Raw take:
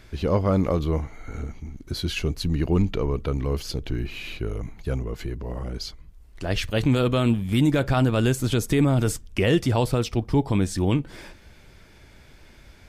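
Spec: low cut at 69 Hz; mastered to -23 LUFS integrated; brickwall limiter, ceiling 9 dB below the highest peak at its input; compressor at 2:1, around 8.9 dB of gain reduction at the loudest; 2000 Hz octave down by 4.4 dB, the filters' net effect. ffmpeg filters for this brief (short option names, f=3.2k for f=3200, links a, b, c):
-af "highpass=69,equalizer=f=2k:t=o:g=-6,acompressor=threshold=-33dB:ratio=2,volume=14dB,alimiter=limit=-12.5dB:level=0:latency=1"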